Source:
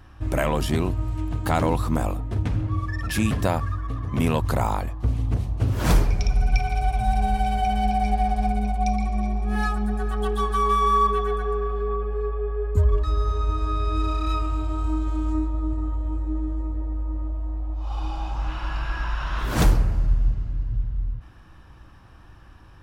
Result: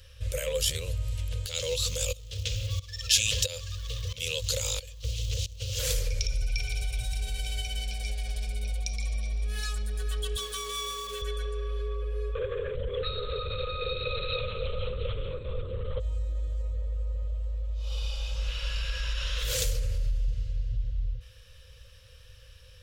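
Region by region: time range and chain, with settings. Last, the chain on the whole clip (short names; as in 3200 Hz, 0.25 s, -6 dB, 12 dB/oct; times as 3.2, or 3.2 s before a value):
1.46–5.79 G.711 law mismatch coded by mu + band shelf 4300 Hz +11 dB + tremolo saw up 1.5 Hz, depth 90%
10.36–11.22 G.711 law mismatch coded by A + HPF 110 Hz
12.35–16 HPF 170 Hz 6 dB/oct + LPC vocoder at 8 kHz whisper + fast leveller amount 100%
whole clip: dynamic EQ 7000 Hz, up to +5 dB, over -56 dBFS, Q 3.4; limiter -18.5 dBFS; EQ curve 100 Hz 0 dB, 320 Hz -30 dB, 510 Hz +12 dB, 730 Hz -22 dB, 3200 Hz +12 dB; gain -3.5 dB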